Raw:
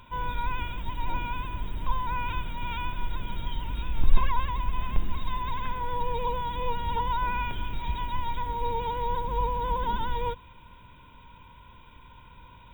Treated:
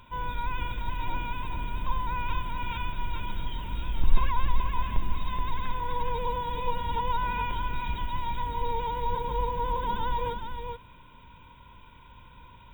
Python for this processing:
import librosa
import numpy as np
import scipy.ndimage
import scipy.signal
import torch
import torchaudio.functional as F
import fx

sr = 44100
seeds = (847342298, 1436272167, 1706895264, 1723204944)

y = x + 10.0 ** (-5.5 / 20.0) * np.pad(x, (int(425 * sr / 1000.0), 0))[:len(x)]
y = F.gain(torch.from_numpy(y), -1.5).numpy()